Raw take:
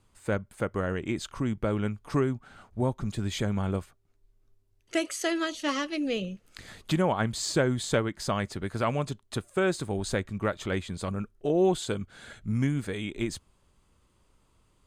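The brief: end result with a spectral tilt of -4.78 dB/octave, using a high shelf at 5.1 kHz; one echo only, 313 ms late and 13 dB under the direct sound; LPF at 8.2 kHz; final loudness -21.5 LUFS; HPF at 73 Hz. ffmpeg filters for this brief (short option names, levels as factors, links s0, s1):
-af "highpass=73,lowpass=8200,highshelf=f=5100:g=7.5,aecho=1:1:313:0.224,volume=2.51"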